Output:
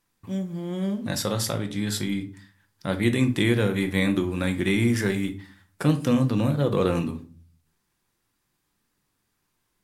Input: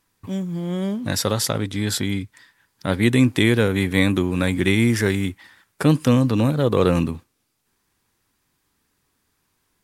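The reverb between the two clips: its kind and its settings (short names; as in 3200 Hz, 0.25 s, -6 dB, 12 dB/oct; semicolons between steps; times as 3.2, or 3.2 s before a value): shoebox room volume 300 m³, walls furnished, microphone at 0.84 m; gain -6 dB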